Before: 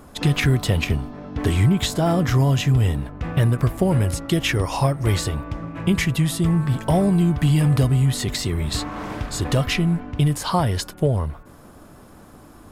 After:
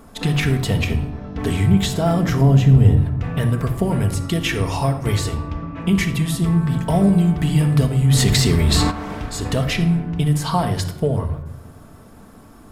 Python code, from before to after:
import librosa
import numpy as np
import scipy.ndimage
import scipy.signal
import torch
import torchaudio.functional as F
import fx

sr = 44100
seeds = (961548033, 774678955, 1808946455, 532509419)

y = fx.tilt_shelf(x, sr, db=6.5, hz=970.0, at=(2.41, 2.97))
y = fx.lowpass(y, sr, hz=6100.0, slope=24, at=(5.37, 5.81))
y = fx.room_shoebox(y, sr, seeds[0], volume_m3=2500.0, walls='furnished', distance_m=1.6)
y = fx.env_flatten(y, sr, amount_pct=50, at=(8.1, 8.9), fade=0.02)
y = F.gain(torch.from_numpy(y), -1.0).numpy()